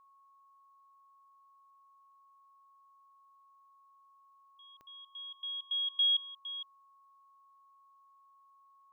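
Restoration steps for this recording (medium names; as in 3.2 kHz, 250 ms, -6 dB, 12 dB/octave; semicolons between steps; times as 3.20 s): de-click; band-stop 1.1 kHz, Q 30; inverse comb 460 ms -13.5 dB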